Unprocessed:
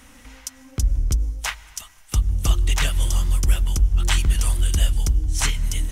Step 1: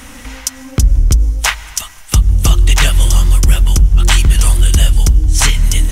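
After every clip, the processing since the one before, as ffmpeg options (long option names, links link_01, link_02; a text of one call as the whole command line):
ffmpeg -i in.wav -filter_complex "[0:a]asplit=2[link_01][link_02];[link_02]acompressor=threshold=-25dB:ratio=6,volume=2dB[link_03];[link_01][link_03]amix=inputs=2:normalize=0,apsyclip=9.5dB,volume=-2dB" out.wav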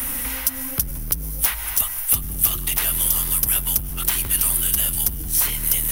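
ffmpeg -i in.wav -filter_complex "[0:a]apsyclip=17dB,acrossover=split=150|900[link_01][link_02][link_03];[link_01]acompressor=threshold=-16dB:ratio=4[link_04];[link_02]acompressor=threshold=-22dB:ratio=4[link_05];[link_03]acompressor=threshold=-11dB:ratio=4[link_06];[link_04][link_05][link_06]amix=inputs=3:normalize=0,aexciter=amount=8.6:drive=8.5:freq=10000,volume=-16dB" out.wav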